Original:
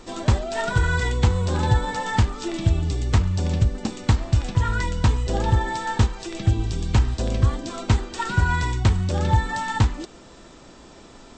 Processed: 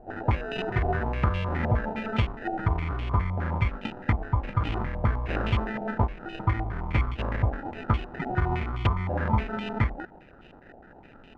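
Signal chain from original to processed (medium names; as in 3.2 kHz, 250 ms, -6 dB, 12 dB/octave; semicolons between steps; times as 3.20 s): sample-rate reducer 1.1 kHz, jitter 0%; step-sequenced low-pass 9.7 Hz 750–2800 Hz; trim -6.5 dB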